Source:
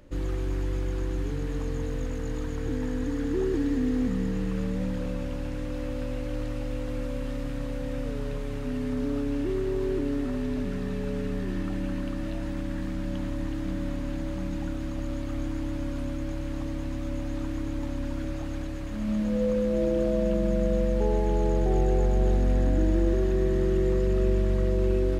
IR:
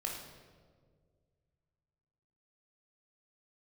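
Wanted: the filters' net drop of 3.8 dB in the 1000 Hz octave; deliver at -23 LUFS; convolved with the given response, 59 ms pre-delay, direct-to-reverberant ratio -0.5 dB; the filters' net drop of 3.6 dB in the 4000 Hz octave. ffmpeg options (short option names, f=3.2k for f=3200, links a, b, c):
-filter_complex "[0:a]equalizer=f=1k:t=o:g=-5,equalizer=f=4k:t=o:g=-4.5,asplit=2[a][b];[1:a]atrim=start_sample=2205,adelay=59[c];[b][c]afir=irnorm=-1:irlink=0,volume=-1dB[d];[a][d]amix=inputs=2:normalize=0,volume=3dB"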